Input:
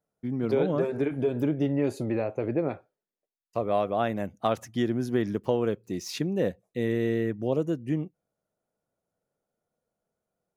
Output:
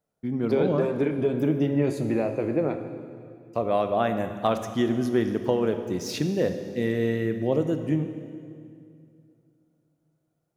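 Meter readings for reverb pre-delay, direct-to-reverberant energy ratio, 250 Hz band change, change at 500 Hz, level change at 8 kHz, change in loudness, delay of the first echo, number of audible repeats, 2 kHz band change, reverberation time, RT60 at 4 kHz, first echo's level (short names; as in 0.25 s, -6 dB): 7 ms, 7.5 dB, +3.0 dB, +2.5 dB, +2.5 dB, +2.5 dB, none, none, +3.0 dB, 2.4 s, 2.1 s, none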